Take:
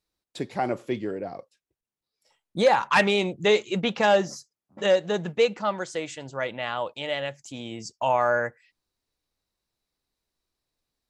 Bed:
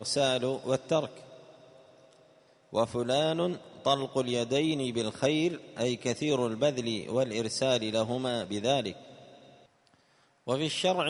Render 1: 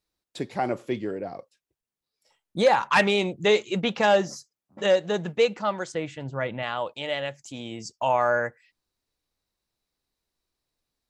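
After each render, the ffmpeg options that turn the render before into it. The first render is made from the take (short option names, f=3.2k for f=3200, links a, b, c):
-filter_complex "[0:a]asettb=1/sr,asplit=3[a][b][c];[a]atrim=end=5.924[d];[b]atrim=start=5.92:end=6.63,asetpts=PTS-STARTPTS,afade=t=in:d=0.004:c=qsin,afade=t=out:st=0.706:d=0.004:c=qsin,bass=f=250:g=9,treble=f=4k:g=-13[e];[c]atrim=start=6.626[f];[d][e]acrossfade=d=0.004:c1=hsin:c2=qsin[g];[g][f]acrossfade=d=0.004:c1=qsin:c2=hsin"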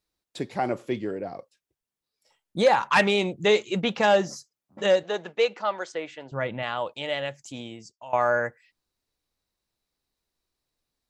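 -filter_complex "[0:a]asettb=1/sr,asplit=3[a][b][c];[a]atrim=end=5.034[d];[b]atrim=start=5.03:end=6.32,asetpts=PTS-STARTPTS,afade=t=in:d=0.004:c=qsin,afade=t=out:st=1.286:d=0.004:c=qsin,highpass=400,lowpass=5.8k[e];[c]atrim=start=6.316[f];[d][e]acrossfade=d=0.004:c1=hsin:c2=qsin[g];[g][f]acrossfade=d=0.004:c1=qsin:c2=hsin,asplit=2[h][i];[h]atrim=end=8.13,asetpts=PTS-STARTPTS,afade=t=out:st=7.59:d=0.54:c=qua:silence=0.125893[j];[i]atrim=start=8.13,asetpts=PTS-STARTPTS,afade=t=in:d=0.004:c=hsin:silence=0.125893[k];[j][k]concat=n=2:v=0:a=1"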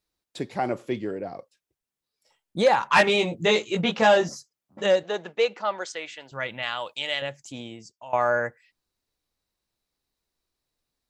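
-filter_complex "[0:a]asettb=1/sr,asplit=3[a][b][c];[a]atrim=end=2.884[d];[b]atrim=start=2.88:end=4.29,asetpts=PTS-STARTPTS,afade=t=in:d=0.004:c=qsin,afade=t=out:st=1.406:d=0.004:c=qsin,asplit=2[e][f];[f]adelay=18,volume=-2dB[g];[e][g]amix=inputs=2:normalize=0,atrim=end_sample=62181[h];[c]atrim=start=4.286[i];[d][h]acrossfade=d=0.004:c1=hsin:c2=qsin[j];[j][i]acrossfade=d=0.004:c1=qsin:c2=hsin,asettb=1/sr,asplit=3[k][l][m];[k]atrim=end=5.854[n];[l]atrim=start=5.85:end=7.22,asetpts=PTS-STARTPTS,afade=t=in:d=0.004:c=qsin,afade=t=out:st=1.366:d=0.004:c=qsin,tiltshelf=f=1.3k:g=-8[o];[m]atrim=start=7.216[p];[n][o]acrossfade=d=0.004:c1=hsin:c2=qsin[q];[q][p]acrossfade=d=0.004:c1=qsin:c2=hsin"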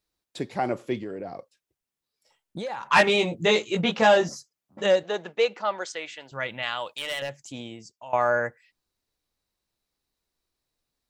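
-filter_complex "[0:a]asettb=1/sr,asplit=3[a][b][c];[a]atrim=end=1.004[d];[b]atrim=start=1:end=2.88,asetpts=PTS-STARTPTS,afade=t=in:d=0.004:c=qsin,afade=t=out:st=1.876:d=0.004:c=qsin,acompressor=threshold=-30dB:ratio=6:attack=3.2:release=140:knee=1:detection=peak[e];[c]atrim=start=2.876[f];[d][e]acrossfade=d=0.004:c1=hsin:c2=qsin[g];[g][f]acrossfade=d=0.004:c1=qsin:c2=hsin,asettb=1/sr,asplit=3[h][i][j];[h]atrim=end=6.864[k];[i]atrim=start=6.86:end=7.43,asetpts=PTS-STARTPTS,afade=t=in:d=0.004:c=qsin,afade=t=out:st=0.566:d=0.004:c=qsin,volume=25.5dB,asoftclip=hard,volume=-25.5dB[l];[j]atrim=start=7.426[m];[k][l]acrossfade=d=0.004:c1=hsin:c2=qsin[n];[n][m]acrossfade=d=0.004:c1=qsin:c2=hsin"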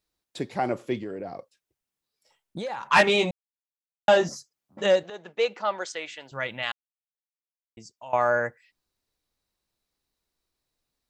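-filter_complex "[0:a]asplit=6[a][b][c][d][e][f];[a]atrim=end=3.31,asetpts=PTS-STARTPTS,afade=t=out:st=3.306:d=0.004:c=hsin[g];[b]atrim=start=3.31:end=4.08,asetpts=PTS-STARTPTS,volume=0[h];[c]atrim=start=4.08:end=5.1,asetpts=PTS-STARTPTS,afade=t=in:d=0.004:c=hsin,afade=t=out:st=1.016:d=0.004:c=hsin:silence=0.188365[i];[d]atrim=start=5.1:end=6.72,asetpts=PTS-STARTPTS,afade=t=in:d=0.6:c=qsin:silence=0.188365,afade=t=out:st=1.616:d=0.004:c=hsin[j];[e]atrim=start=6.72:end=7.77,asetpts=PTS-STARTPTS,volume=0[k];[f]atrim=start=7.77,asetpts=PTS-STARTPTS,afade=t=in:d=0.004:c=hsin[l];[g][h][i][j][k][l]concat=n=6:v=0:a=1"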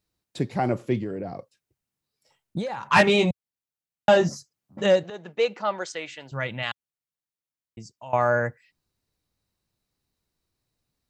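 -af "equalizer=f=120:t=o:w=2:g=10.5,bandreject=f=3.4k:w=29"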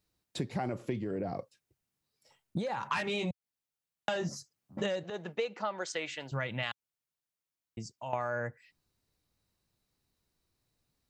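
-filter_complex "[0:a]acrossover=split=1300[a][b];[a]alimiter=limit=-16.5dB:level=0:latency=1:release=36[c];[c][b]amix=inputs=2:normalize=0,acompressor=threshold=-30dB:ratio=10"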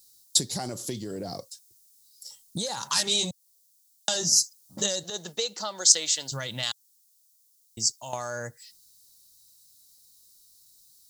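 -af "aexciter=amount=14.7:drive=6.9:freq=3.8k"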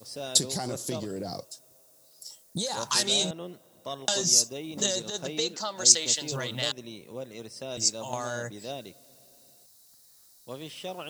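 -filter_complex "[1:a]volume=-10.5dB[a];[0:a][a]amix=inputs=2:normalize=0"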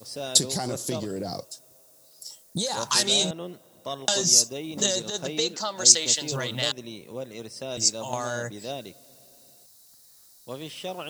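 -af "volume=3dB,alimiter=limit=-1dB:level=0:latency=1"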